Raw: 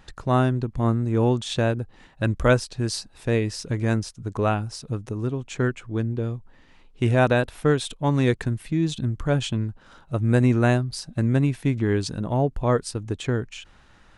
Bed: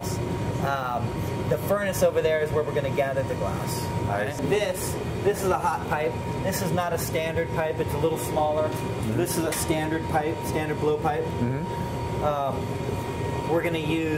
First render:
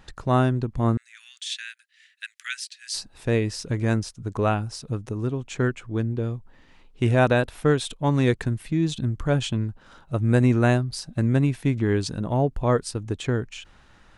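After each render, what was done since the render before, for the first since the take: 0.97–2.94 steep high-pass 1700 Hz 48 dB/oct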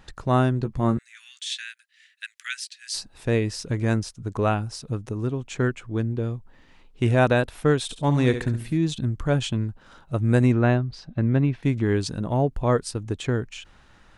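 0.59–1.64 doubler 14 ms -8 dB; 7.82–8.78 flutter echo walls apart 11.9 m, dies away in 0.42 s; 10.52–11.63 air absorption 210 m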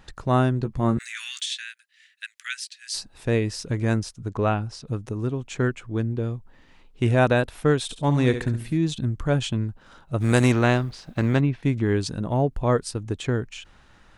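0.92–1.46 fast leveller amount 50%; 4.29–4.87 air absorption 65 m; 10.2–11.39 spectral contrast lowered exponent 0.69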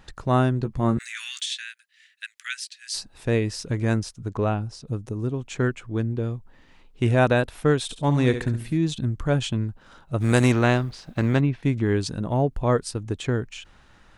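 4.44–5.34 bell 1900 Hz -5.5 dB 2.6 oct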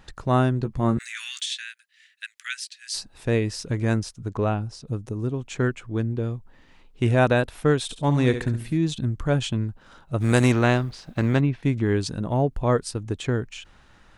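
nothing audible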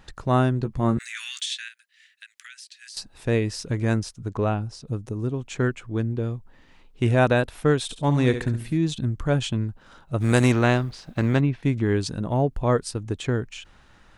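1.68–2.97 compressor, threshold -40 dBFS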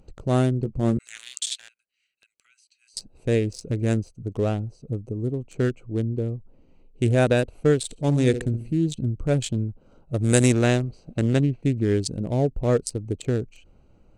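Wiener smoothing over 25 samples; graphic EQ 500/1000/8000 Hz +4/-10/+12 dB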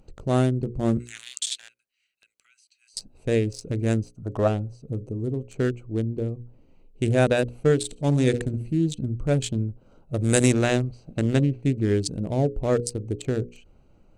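notches 60/120/180/240/300/360/420/480/540 Hz; 4.16–4.48 spectral gain 520–1900 Hz +10 dB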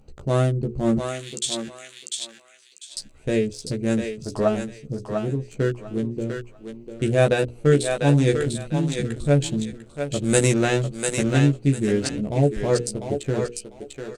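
doubler 14 ms -3.5 dB; on a send: thinning echo 0.697 s, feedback 25%, high-pass 590 Hz, level -3.5 dB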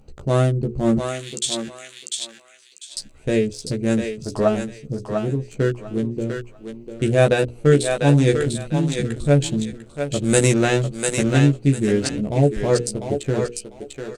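gain +2.5 dB; limiter -2 dBFS, peak gain reduction 1 dB

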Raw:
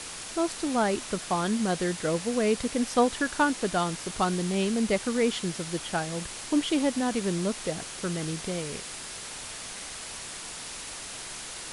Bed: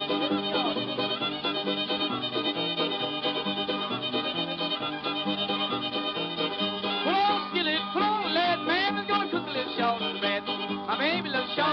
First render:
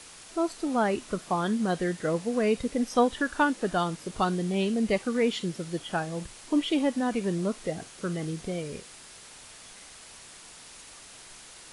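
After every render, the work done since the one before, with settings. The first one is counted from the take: noise print and reduce 9 dB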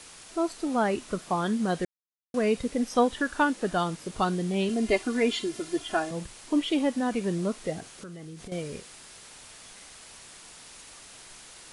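1.85–2.34 mute; 4.69–6.11 comb 2.9 ms, depth 92%; 7.8–8.52 compressor 12:1, threshold -38 dBFS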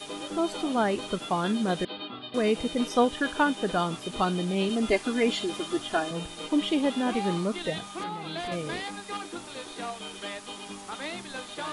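add bed -10 dB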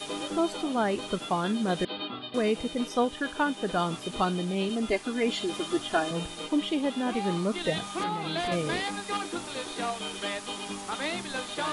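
vocal rider within 4 dB 0.5 s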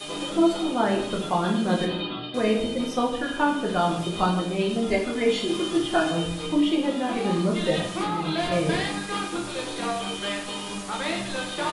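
echo 0.154 s -17 dB; shoebox room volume 110 m³, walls mixed, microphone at 0.91 m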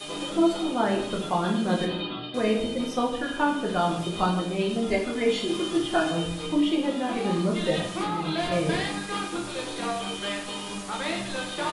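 gain -1.5 dB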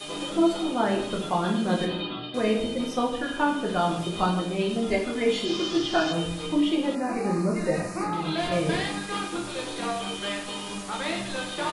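5.45–6.13 synth low-pass 5300 Hz, resonance Q 2.6; 6.95–8.13 Butterworth band-stop 3300 Hz, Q 1.6

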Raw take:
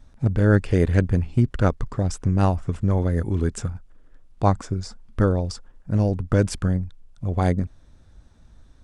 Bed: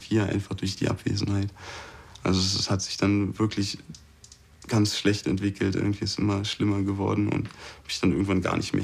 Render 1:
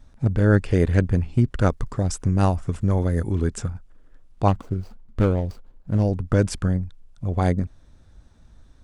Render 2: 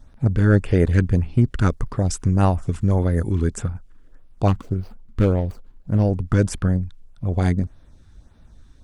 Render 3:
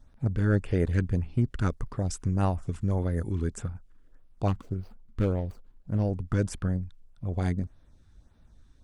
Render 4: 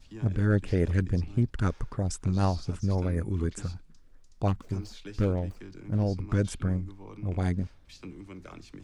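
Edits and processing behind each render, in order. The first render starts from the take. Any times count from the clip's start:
1.59–3.32 high shelf 8100 Hz +9.5 dB; 4.48–6.03 median filter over 25 samples
LFO notch sine 1.7 Hz 520–7700 Hz; in parallel at -9.5 dB: soft clip -12 dBFS, distortion -16 dB
gain -8.5 dB
add bed -20.5 dB

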